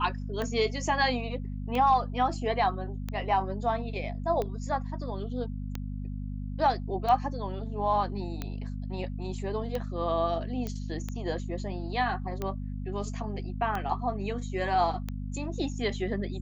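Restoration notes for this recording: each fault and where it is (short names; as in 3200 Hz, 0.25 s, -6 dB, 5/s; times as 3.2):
hum 50 Hz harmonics 5 -35 dBFS
tick 45 rpm -19 dBFS
10.67 pop -21 dBFS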